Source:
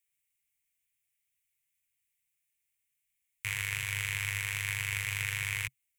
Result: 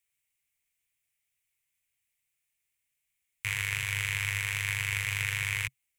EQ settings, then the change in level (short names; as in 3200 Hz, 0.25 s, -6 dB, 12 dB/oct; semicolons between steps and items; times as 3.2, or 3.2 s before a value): high shelf 9800 Hz -5 dB; +3.0 dB